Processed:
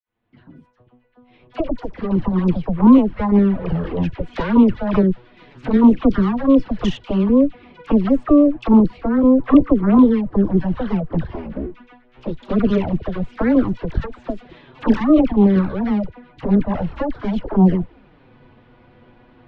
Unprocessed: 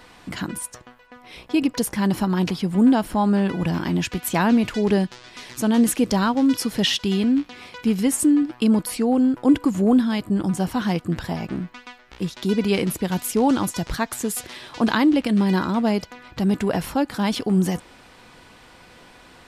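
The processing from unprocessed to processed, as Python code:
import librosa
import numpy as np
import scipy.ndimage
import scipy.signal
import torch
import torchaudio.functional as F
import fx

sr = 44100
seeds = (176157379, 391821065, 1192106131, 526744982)

y = fx.fade_in_head(x, sr, length_s=2.45)
y = scipy.signal.sosfilt(scipy.signal.butter(4, 3400.0, 'lowpass', fs=sr, output='sos'), y)
y = fx.tilt_shelf(y, sr, db=7.5, hz=660.0)
y = fx.cheby_harmonics(y, sr, harmonics=(6,), levels_db=(-11,), full_scale_db=-2.0)
y = fx.env_flanger(y, sr, rest_ms=8.7, full_db=-7.5)
y = fx.dispersion(y, sr, late='lows', ms=61.0, hz=1000.0)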